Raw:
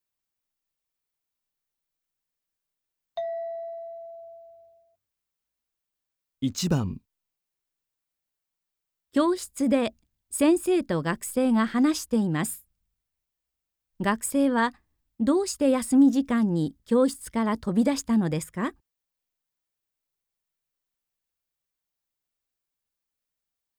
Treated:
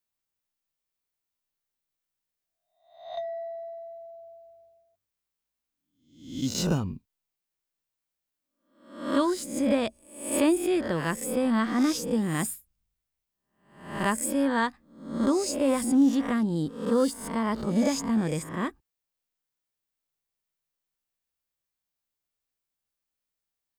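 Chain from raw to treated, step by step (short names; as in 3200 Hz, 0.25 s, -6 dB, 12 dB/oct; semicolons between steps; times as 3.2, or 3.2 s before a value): spectral swells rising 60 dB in 0.59 s; 17.95–18.52 high shelf 12000 Hz -> 8200 Hz -6.5 dB; gain -3 dB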